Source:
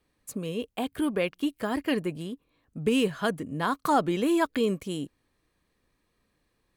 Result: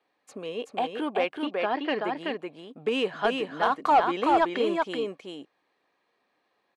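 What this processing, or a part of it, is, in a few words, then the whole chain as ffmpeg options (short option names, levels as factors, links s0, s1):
intercom: -filter_complex "[0:a]asettb=1/sr,asplit=3[s0][s1][s2];[s0]atrim=end=1.344[s3];[s1]atrim=start=1.34:end=2.01,asetpts=PTS-STARTPTS,afade=t=in:d=0.004:c=qsin,afade=t=out:st=0.666:d=0.004:c=qsin,lowpass=f=5100:w=0.5412,lowpass=f=5100:w=1.3066[s4];[s2]atrim=start=2.006[s5];[s3][s4]acrossfade=d=0.004:c1=hsin:c2=qsin[s6];[s6][s5]acrossfade=d=0.004:c1=qsin:c2=hsin,highpass=410,lowpass=3800,equalizer=f=770:t=o:w=0.44:g=7.5,aecho=1:1:379:0.668,asoftclip=type=tanh:threshold=0.2,volume=1.26"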